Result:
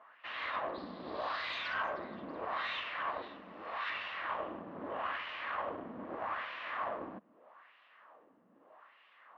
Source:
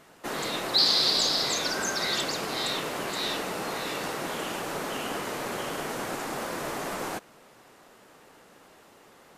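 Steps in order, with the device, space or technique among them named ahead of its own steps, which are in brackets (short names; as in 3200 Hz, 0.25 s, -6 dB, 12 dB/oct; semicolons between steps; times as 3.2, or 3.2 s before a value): wah-wah guitar rig (wah 0.8 Hz 210–2800 Hz, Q 2; tube stage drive 34 dB, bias 0.7; speaker cabinet 81–3600 Hz, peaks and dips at 140 Hz -8 dB, 400 Hz -6 dB, 620 Hz +5 dB, 1100 Hz +10 dB, 1800 Hz +5 dB, 2900 Hz +3 dB); 3.22–3.9 tilt shelf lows -9 dB, about 1500 Hz; gain +1 dB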